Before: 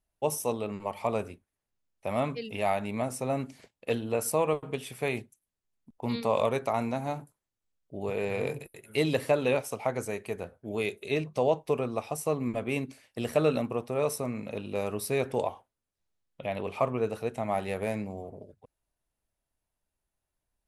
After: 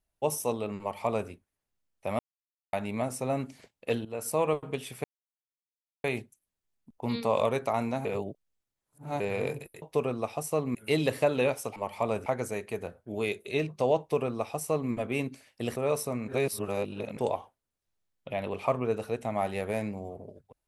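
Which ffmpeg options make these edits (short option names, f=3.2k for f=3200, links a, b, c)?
-filter_complex "[0:a]asplit=14[a][b][c][d][e][f][g][h][i][j][k][l][m][n];[a]atrim=end=2.19,asetpts=PTS-STARTPTS,afade=t=out:st=2.186:d=0.004:c=hsin[o];[b]atrim=start=2.19:end=2.73,asetpts=PTS-STARTPTS,volume=0[p];[c]atrim=start=2.73:end=4.05,asetpts=PTS-STARTPTS,afade=t=in:d=0.004:c=hsin,afade=t=out:st=1.316:d=0.004:c=hsin:silence=0.199526[q];[d]atrim=start=4.05:end=5.04,asetpts=PTS-STARTPTS,afade=t=in:d=0.38:silence=0.199526,afade=t=out:st=0.986:d=0.004:c=hsin,apad=pad_dur=1[r];[e]atrim=start=5.04:end=7.052,asetpts=PTS-STARTPTS,afade=t=in:d=0.004:c=hsin[s];[f]atrim=start=7.048:end=8.202,asetpts=PTS-STARTPTS,areverse[t];[g]atrim=start=8.198:end=8.822[u];[h]atrim=start=11.558:end=12.492[v];[i]atrim=start=8.818:end=9.832[w];[j]atrim=start=0.798:end=1.302[x];[k]atrim=start=9.828:end=13.332[y];[l]atrim=start=13.888:end=14.412[z];[m]atrim=start=14.408:end=15.302,asetpts=PTS-STARTPTS,areverse[aa];[n]atrim=start=15.298[ab];[o][p][q][r][s]concat=n=5:v=0:a=1[ac];[ac][t]acrossfade=d=0.004:c1=hsin:c2=hsin[ad];[ad][u]acrossfade=d=0.004:c1=hsin:c2=hsin[ae];[ae][v]acrossfade=d=0.004:c1=hsin:c2=hsin[af];[af][w]acrossfade=d=0.004:c1=hsin:c2=hsin[ag];[ag][x]acrossfade=d=0.004:c1=hsin:c2=hsin[ah];[ah][y]acrossfade=d=0.004:c1=hsin:c2=hsin[ai];[ai][z]acrossfade=d=0.004:c1=hsin:c2=hsin[aj];[aj][aa]acrossfade=d=0.004:c1=hsin:c2=hsin[ak];[ak][ab]acrossfade=d=0.004:c1=hsin:c2=hsin"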